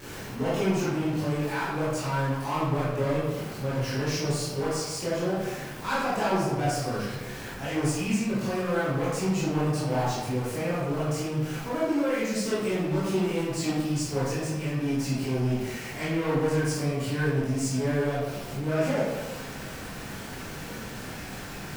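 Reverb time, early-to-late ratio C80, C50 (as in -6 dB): 1.2 s, 2.0 dB, -1.0 dB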